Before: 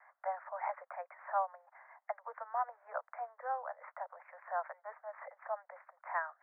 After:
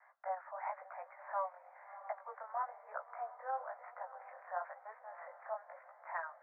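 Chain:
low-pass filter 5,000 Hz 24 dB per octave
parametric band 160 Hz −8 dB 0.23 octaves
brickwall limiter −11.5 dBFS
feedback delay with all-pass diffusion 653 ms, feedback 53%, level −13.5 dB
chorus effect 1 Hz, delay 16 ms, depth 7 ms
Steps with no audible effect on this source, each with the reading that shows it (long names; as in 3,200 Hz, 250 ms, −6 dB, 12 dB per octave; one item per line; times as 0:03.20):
low-pass filter 5,000 Hz: nothing at its input above 2,200 Hz
parametric band 160 Hz: nothing at its input below 430 Hz
brickwall limiter −11.5 dBFS: peak of its input −23.5 dBFS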